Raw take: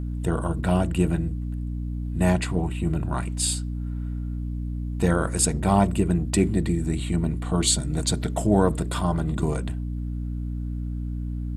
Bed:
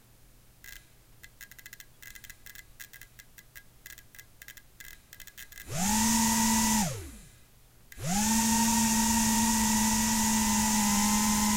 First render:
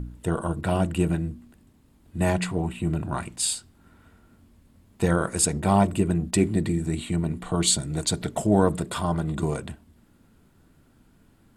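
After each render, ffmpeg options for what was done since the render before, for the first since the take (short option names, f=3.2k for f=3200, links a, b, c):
-af "bandreject=f=60:t=h:w=4,bandreject=f=120:t=h:w=4,bandreject=f=180:t=h:w=4,bandreject=f=240:t=h:w=4,bandreject=f=300:t=h:w=4"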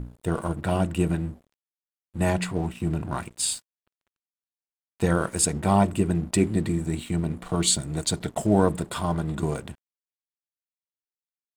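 -af "aeval=exprs='sgn(val(0))*max(abs(val(0))-0.00531,0)':c=same"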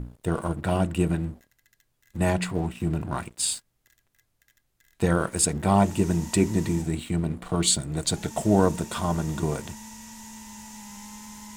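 -filter_complex "[1:a]volume=-16.5dB[a];[0:a][a]amix=inputs=2:normalize=0"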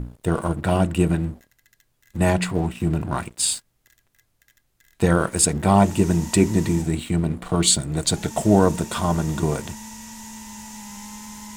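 -af "volume=4.5dB,alimiter=limit=-3dB:level=0:latency=1"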